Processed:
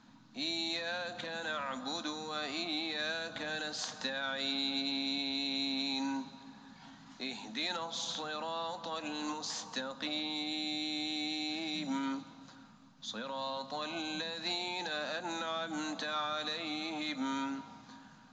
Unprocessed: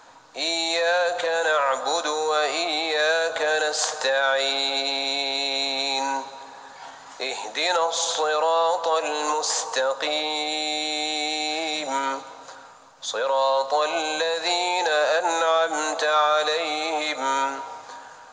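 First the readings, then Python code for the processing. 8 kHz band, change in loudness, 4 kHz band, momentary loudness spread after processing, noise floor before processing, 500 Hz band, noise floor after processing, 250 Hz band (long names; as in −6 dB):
−17.0 dB, −13.5 dB, −10.5 dB, 10 LU, −45 dBFS, −19.5 dB, −57 dBFS, −1.0 dB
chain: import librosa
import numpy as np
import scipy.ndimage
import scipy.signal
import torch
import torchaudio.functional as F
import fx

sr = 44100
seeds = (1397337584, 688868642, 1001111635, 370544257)

y = fx.curve_eq(x, sr, hz=(100.0, 220.0, 460.0, 3900.0, 6200.0, 10000.0), db=(0, 14, -19, -8, -13, -27))
y = y * 10.0 ** (-2.0 / 20.0)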